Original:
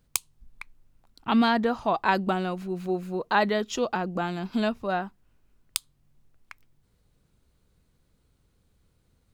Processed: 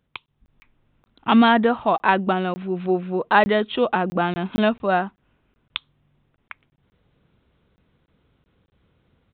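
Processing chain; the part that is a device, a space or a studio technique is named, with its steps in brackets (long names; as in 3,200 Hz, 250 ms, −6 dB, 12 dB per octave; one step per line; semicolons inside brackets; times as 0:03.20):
call with lost packets (high-pass filter 120 Hz 6 dB per octave; downsampling to 8,000 Hz; automatic gain control gain up to 8 dB; dropped packets of 20 ms random)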